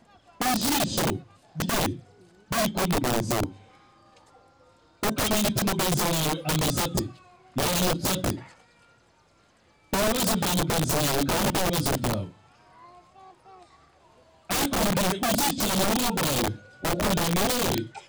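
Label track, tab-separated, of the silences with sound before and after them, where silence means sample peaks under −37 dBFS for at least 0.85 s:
3.520000	5.030000	silence
8.430000	9.930000	silence
12.290000	14.500000	silence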